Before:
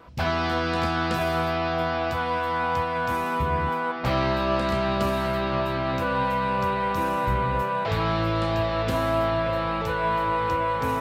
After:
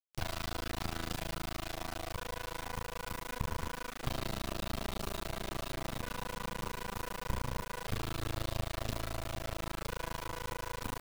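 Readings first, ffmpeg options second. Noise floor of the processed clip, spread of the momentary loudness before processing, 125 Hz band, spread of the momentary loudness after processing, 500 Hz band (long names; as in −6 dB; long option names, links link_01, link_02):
−48 dBFS, 2 LU, −12.0 dB, 3 LU, −18.0 dB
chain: -filter_complex "[0:a]tremolo=f=27:d=0.974,acrossover=split=150|3000[link_01][link_02][link_03];[link_02]acompressor=threshold=-38dB:ratio=4[link_04];[link_01][link_04][link_03]amix=inputs=3:normalize=0,acrusher=bits=4:dc=4:mix=0:aa=0.000001"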